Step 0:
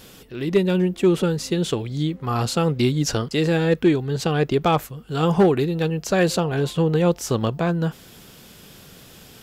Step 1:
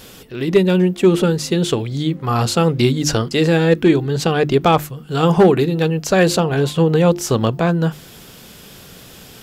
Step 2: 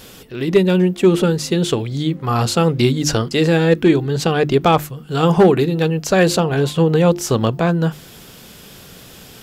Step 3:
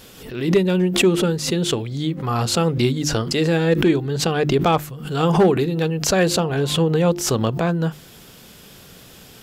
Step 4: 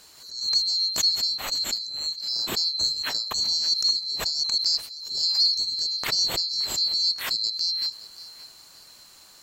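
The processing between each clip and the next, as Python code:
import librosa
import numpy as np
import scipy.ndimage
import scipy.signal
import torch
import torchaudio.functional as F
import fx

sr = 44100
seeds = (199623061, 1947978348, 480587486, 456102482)

y1 = fx.hum_notches(x, sr, base_hz=50, count=7)
y1 = y1 * librosa.db_to_amplitude(5.5)
y2 = y1
y3 = fx.pre_swell(y2, sr, db_per_s=78.0)
y3 = y3 * librosa.db_to_amplitude(-4.0)
y4 = fx.band_swap(y3, sr, width_hz=4000)
y4 = fx.echo_feedback(y4, sr, ms=572, feedback_pct=31, wet_db=-18.0)
y4 = y4 * librosa.db_to_amplitude(-7.0)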